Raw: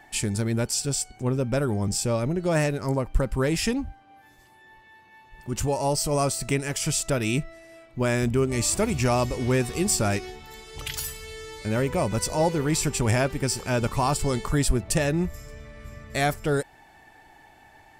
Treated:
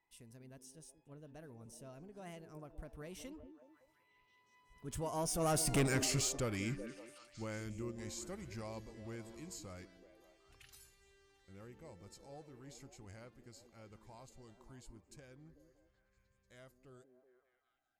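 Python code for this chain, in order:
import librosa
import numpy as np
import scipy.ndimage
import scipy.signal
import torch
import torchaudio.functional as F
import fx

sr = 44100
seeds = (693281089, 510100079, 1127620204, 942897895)

y = fx.doppler_pass(x, sr, speed_mps=40, closest_m=5.9, pass_at_s=5.8)
y = 10.0 ** (-28.5 / 20.0) * np.tanh(y / 10.0 ** (-28.5 / 20.0))
y = fx.echo_stepped(y, sr, ms=188, hz=280.0, octaves=0.7, feedback_pct=70, wet_db=-6.5)
y = y * librosa.db_to_amplitude(1.0)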